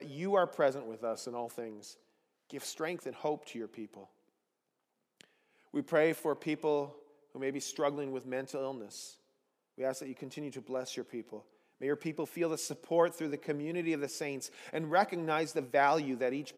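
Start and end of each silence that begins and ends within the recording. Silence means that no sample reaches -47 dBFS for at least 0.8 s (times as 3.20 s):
4.04–5.21 s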